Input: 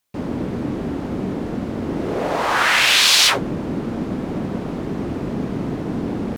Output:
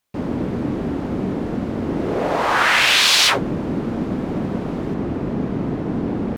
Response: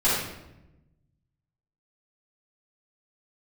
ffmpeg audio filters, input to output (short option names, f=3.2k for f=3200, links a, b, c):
-af "asetnsamples=n=441:p=0,asendcmd='4.94 highshelf g -11',highshelf=f=3.9k:g=-5,volume=1.5dB"